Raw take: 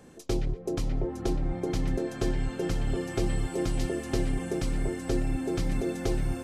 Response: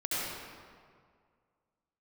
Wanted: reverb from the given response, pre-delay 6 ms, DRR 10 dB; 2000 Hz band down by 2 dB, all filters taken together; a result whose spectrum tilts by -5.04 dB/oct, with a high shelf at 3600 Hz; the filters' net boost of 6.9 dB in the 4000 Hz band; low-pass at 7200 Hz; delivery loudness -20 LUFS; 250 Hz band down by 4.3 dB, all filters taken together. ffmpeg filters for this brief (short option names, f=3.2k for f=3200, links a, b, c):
-filter_complex "[0:a]lowpass=7.2k,equalizer=f=250:t=o:g=-6.5,equalizer=f=2k:t=o:g=-5.5,highshelf=f=3.6k:g=5.5,equalizer=f=4k:t=o:g=7,asplit=2[a][b];[1:a]atrim=start_sample=2205,adelay=6[c];[b][c]afir=irnorm=-1:irlink=0,volume=-17.5dB[d];[a][d]amix=inputs=2:normalize=0,volume=12dB"